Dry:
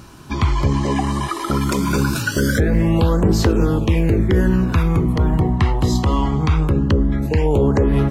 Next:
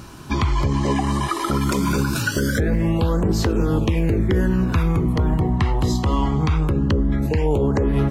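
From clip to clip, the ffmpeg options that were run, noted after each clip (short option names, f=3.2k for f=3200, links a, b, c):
-af "alimiter=limit=-12.5dB:level=0:latency=1:release=282,volume=2dB"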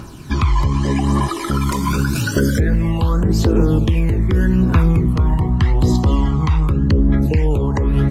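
-af "aphaser=in_gain=1:out_gain=1:delay=1.1:decay=0.5:speed=0.84:type=triangular"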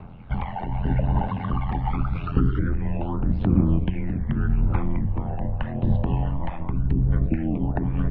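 -af "tiltshelf=f=780:g=7,aeval=exprs='val(0)*sin(2*PI*43*n/s)':c=same,highpass=f=220:t=q:w=0.5412,highpass=f=220:t=q:w=1.307,lowpass=f=3.2k:t=q:w=0.5176,lowpass=f=3.2k:t=q:w=0.7071,lowpass=f=3.2k:t=q:w=1.932,afreqshift=-190,volume=-2dB"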